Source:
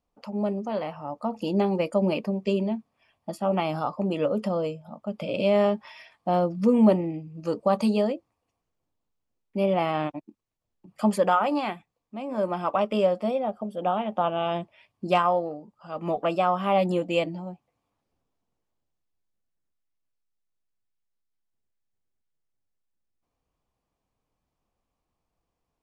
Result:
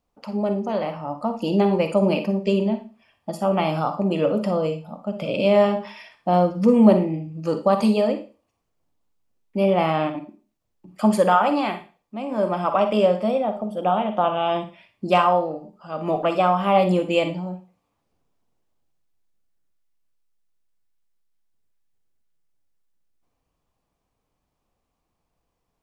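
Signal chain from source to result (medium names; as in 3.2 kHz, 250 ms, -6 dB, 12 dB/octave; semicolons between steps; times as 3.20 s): Schroeder reverb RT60 0.34 s, DRR 7.5 dB; trim +4 dB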